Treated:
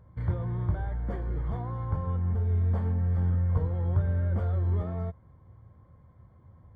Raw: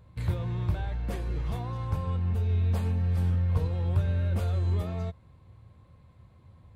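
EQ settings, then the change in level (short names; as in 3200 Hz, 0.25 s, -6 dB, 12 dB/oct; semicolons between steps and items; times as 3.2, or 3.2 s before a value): polynomial smoothing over 41 samples; 0.0 dB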